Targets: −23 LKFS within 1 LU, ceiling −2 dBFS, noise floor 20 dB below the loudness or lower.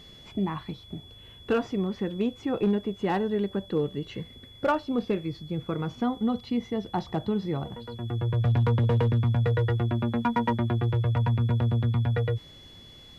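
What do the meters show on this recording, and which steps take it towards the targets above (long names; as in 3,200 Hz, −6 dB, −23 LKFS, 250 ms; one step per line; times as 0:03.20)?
share of clipped samples 0.5%; peaks flattened at −17.5 dBFS; interfering tone 3,400 Hz; level of the tone −49 dBFS; integrated loudness −27.5 LKFS; sample peak −17.5 dBFS; target loudness −23.0 LKFS
→ clipped peaks rebuilt −17.5 dBFS
notch filter 3,400 Hz, Q 30
level +4.5 dB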